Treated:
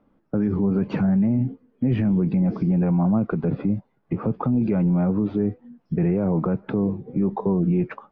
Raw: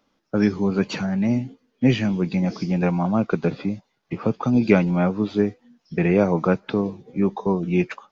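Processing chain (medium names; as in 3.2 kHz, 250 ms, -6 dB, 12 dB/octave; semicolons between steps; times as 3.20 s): low-pass 1.6 kHz 12 dB/octave; bass shelf 430 Hz +11 dB; peak limiter -14 dBFS, peak gain reduction 17 dB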